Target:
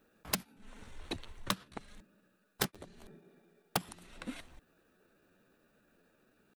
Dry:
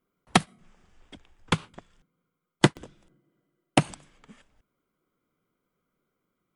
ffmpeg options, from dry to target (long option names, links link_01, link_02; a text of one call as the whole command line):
ffmpeg -i in.wav -af "aeval=exprs='(mod(3.16*val(0)+1,2)-1)/3.16':channel_layout=same,asetrate=52444,aresample=44100,atempo=0.840896,acompressor=threshold=-42dB:ratio=12,volume=10dB" out.wav